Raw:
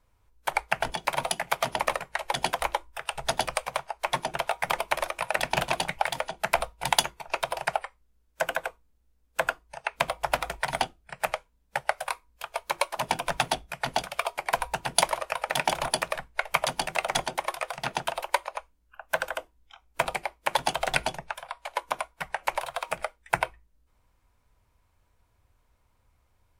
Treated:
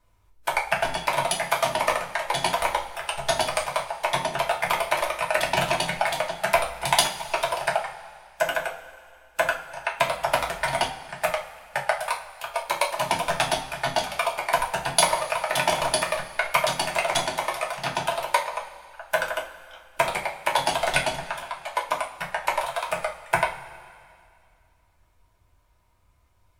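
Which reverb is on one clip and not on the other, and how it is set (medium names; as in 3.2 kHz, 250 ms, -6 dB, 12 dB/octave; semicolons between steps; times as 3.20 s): two-slope reverb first 0.3 s, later 2.3 s, from -18 dB, DRR -1.5 dB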